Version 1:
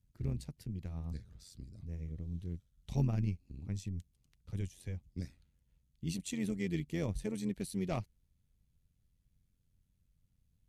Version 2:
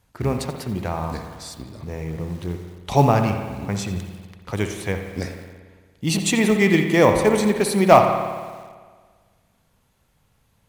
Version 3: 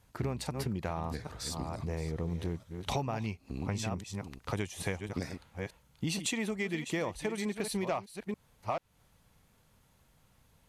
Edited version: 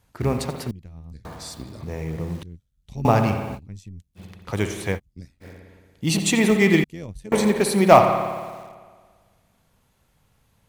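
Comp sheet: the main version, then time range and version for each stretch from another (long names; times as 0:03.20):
2
0:00.71–0:01.25: punch in from 1
0:02.43–0:03.05: punch in from 1
0:03.57–0:04.18: punch in from 1, crossfade 0.06 s
0:04.97–0:05.43: punch in from 1, crossfade 0.06 s
0:06.84–0:07.32: punch in from 1
not used: 3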